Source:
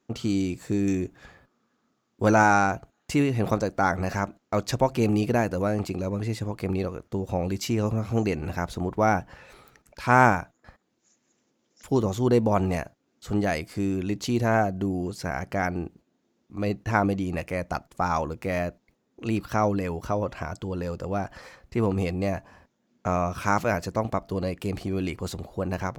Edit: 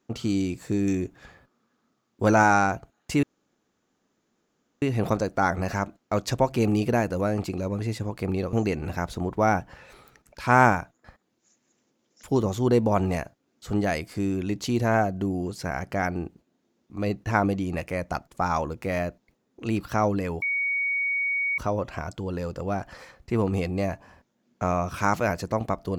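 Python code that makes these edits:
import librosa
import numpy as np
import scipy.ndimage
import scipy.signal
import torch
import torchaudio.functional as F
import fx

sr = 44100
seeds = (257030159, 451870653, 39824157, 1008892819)

y = fx.edit(x, sr, fx.insert_room_tone(at_s=3.23, length_s=1.59),
    fx.cut(start_s=6.94, length_s=1.19),
    fx.insert_tone(at_s=20.02, length_s=1.16, hz=2240.0, db=-23.0), tone=tone)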